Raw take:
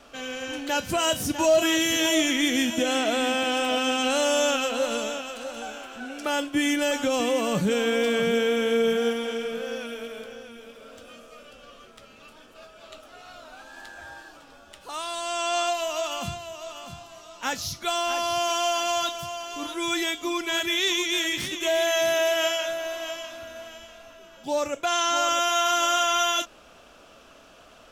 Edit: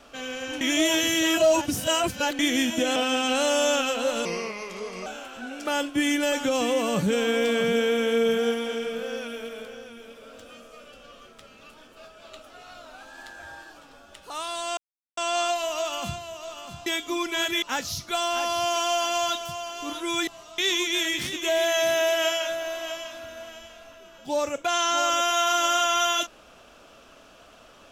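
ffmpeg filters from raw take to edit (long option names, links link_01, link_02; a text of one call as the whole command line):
ffmpeg -i in.wav -filter_complex "[0:a]asplit=11[link_01][link_02][link_03][link_04][link_05][link_06][link_07][link_08][link_09][link_10][link_11];[link_01]atrim=end=0.612[link_12];[link_02]atrim=start=0.608:end=2.392,asetpts=PTS-STARTPTS,areverse[link_13];[link_03]atrim=start=2.388:end=2.962[link_14];[link_04]atrim=start=3.708:end=5.004[link_15];[link_05]atrim=start=5:end=5.65,asetpts=PTS-STARTPTS,asetrate=35280,aresample=44100,atrim=end_sample=35831,asetpts=PTS-STARTPTS[link_16];[link_06]atrim=start=5.646:end=15.36,asetpts=PTS-STARTPTS,afade=type=out:start_time=9.71:duration=0.004:curve=hsin,apad=pad_dur=0.4[link_17];[link_07]atrim=start=15.36:end=17.052,asetpts=PTS-STARTPTS,afade=type=in:duration=0.004:curve=hsin[link_18];[link_08]atrim=start=20.008:end=20.772[link_19];[link_09]atrim=start=17.358:end=20.012[link_20];[link_10]atrim=start=17.048:end=17.362[link_21];[link_11]atrim=start=20.768[link_22];[link_12][link_13]acrossfade=duration=0.004:curve1=hsin:curve2=hsin[link_23];[link_23][link_14]acrossfade=duration=0.004:curve1=hsin:curve2=hsin[link_24];[link_24][link_15]acrossfade=duration=0.004:curve1=hsin:curve2=hsin[link_25];[link_25][link_16]acrossfade=duration=0.004:curve1=hsin:curve2=hsin[link_26];[link_17][link_18]concat=n=2:v=0:a=1[link_27];[link_26][link_27]acrossfade=duration=0.004:curve1=hsin:curve2=hsin[link_28];[link_28][link_19]acrossfade=duration=0.004:curve1=hsin:curve2=hsin[link_29];[link_29][link_20]acrossfade=duration=0.004:curve1=hsin:curve2=hsin[link_30];[link_30][link_21]acrossfade=duration=0.004:curve1=hsin:curve2=hsin[link_31];[link_31][link_22]acrossfade=duration=0.004:curve1=hsin:curve2=hsin" out.wav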